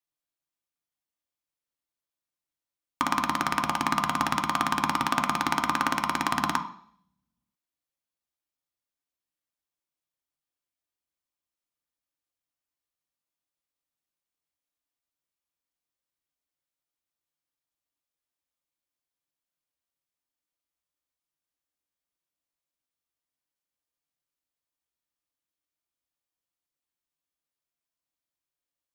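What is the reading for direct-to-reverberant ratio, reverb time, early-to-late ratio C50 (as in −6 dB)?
4.0 dB, 0.60 s, 11.0 dB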